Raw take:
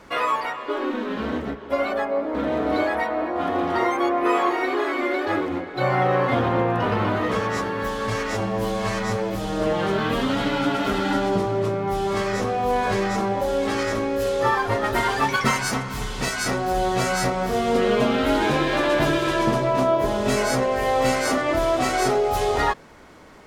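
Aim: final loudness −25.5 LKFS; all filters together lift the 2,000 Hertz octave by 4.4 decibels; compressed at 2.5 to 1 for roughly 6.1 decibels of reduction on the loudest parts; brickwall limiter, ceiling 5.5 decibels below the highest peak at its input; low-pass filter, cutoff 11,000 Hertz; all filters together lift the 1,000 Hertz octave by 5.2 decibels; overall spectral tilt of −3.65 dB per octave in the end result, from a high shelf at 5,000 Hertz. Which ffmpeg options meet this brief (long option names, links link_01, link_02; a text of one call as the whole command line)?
ffmpeg -i in.wav -af "lowpass=11000,equalizer=frequency=1000:width_type=o:gain=6,equalizer=frequency=2000:width_type=o:gain=4,highshelf=frequency=5000:gain=-4,acompressor=threshold=-21dB:ratio=2.5,volume=-1dB,alimiter=limit=-16dB:level=0:latency=1" out.wav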